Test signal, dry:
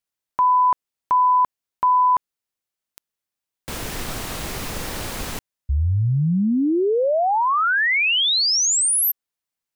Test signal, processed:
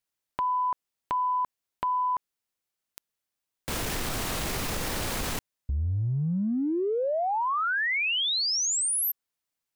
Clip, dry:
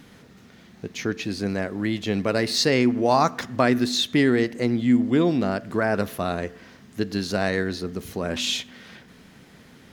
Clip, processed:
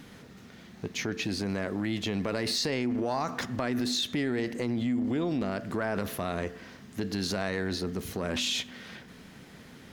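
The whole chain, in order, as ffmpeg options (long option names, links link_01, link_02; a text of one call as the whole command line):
ffmpeg -i in.wav -af "acompressor=threshold=-26dB:ratio=6:attack=1.5:release=44:knee=1:detection=peak" out.wav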